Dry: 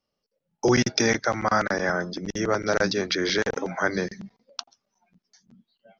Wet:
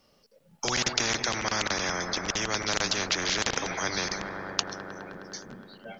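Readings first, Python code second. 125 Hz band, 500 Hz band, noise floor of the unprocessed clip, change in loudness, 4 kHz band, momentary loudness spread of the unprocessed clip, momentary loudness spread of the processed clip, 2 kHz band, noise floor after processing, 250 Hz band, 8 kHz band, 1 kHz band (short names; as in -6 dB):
-7.0 dB, -9.5 dB, -83 dBFS, -3.5 dB, +2.5 dB, 15 LU, 15 LU, -3.0 dB, -64 dBFS, -9.5 dB, n/a, -4.0 dB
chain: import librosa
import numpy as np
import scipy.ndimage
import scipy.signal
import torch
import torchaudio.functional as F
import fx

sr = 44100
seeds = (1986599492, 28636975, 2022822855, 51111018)

y = fx.echo_wet_lowpass(x, sr, ms=104, feedback_pct=82, hz=1500.0, wet_db=-20)
y = fx.spectral_comp(y, sr, ratio=4.0)
y = y * librosa.db_to_amplitude(4.5)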